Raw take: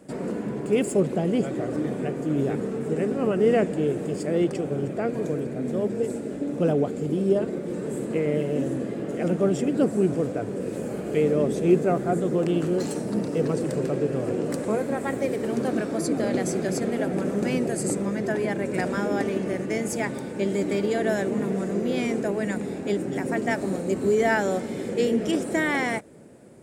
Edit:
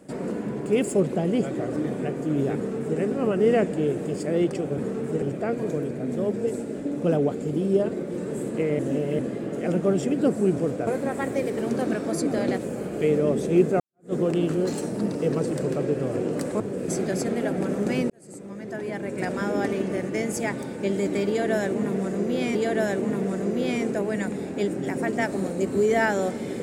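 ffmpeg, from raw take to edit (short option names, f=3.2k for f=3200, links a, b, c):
-filter_complex "[0:a]asplit=12[a][b][c][d][e][f][g][h][i][j][k][l];[a]atrim=end=4.782[m];[b]atrim=start=2.548:end=2.992[n];[c]atrim=start=4.778:end=8.352[o];[d]atrim=start=8.348:end=8.752,asetpts=PTS-STARTPTS,areverse[p];[e]atrim=start=8.748:end=10.432[q];[f]atrim=start=14.728:end=16.442[r];[g]atrim=start=10.708:end=11.93,asetpts=PTS-STARTPTS,afade=t=out:st=1.218:d=0.004:c=hsin[s];[h]atrim=start=11.93:end=14.732,asetpts=PTS-STARTPTS,afade=t=in:d=0.33:c=exp[t];[i]atrim=start=10.428:end=10.712[u];[j]atrim=start=16.438:end=17.66,asetpts=PTS-STARTPTS,afade=t=out:st=1.218:d=0.004:c=hsin[v];[k]atrim=start=17.66:end=22.112,asetpts=PTS-STARTPTS,afade=t=in:d=1.46[w];[l]atrim=start=20.838[x];[m][n]acrossfade=d=0.004:c1=hsin:c2=hsin[y];[y][o]acrossfade=d=0.004:c1=hsin:c2=hsin[z];[z][p]acrossfade=d=0.004:c1=hsin:c2=hsin[aa];[aa][q]acrossfade=d=0.004:c1=hsin:c2=hsin[ab];[ab][r]acrossfade=d=0.004:c1=hsin:c2=hsin[ac];[s][t]concat=n=2:v=0:a=1[ad];[ac][ad]acrossfade=d=0.004:c1=hsin:c2=hsin[ae];[ae][u]acrossfade=d=0.004:c1=hsin:c2=hsin[af];[v][w]concat=n=2:v=0:a=1[ag];[af][ag]acrossfade=d=0.004:c1=hsin:c2=hsin[ah];[ah][x]acrossfade=d=0.004:c1=hsin:c2=hsin"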